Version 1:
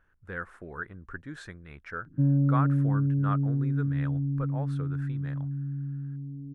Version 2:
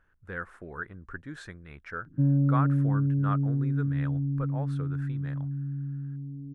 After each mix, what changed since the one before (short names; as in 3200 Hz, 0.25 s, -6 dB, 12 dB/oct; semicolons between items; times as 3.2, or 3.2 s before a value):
none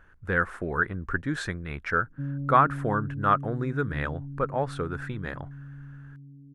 speech +11.5 dB; background -9.5 dB